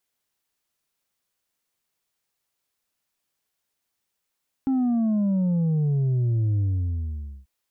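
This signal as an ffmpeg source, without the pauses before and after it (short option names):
-f lavfi -i "aevalsrc='0.1*clip((2.79-t)/0.87,0,1)*tanh(1.5*sin(2*PI*270*2.79/log(65/270)*(exp(log(65/270)*t/2.79)-1)))/tanh(1.5)':d=2.79:s=44100"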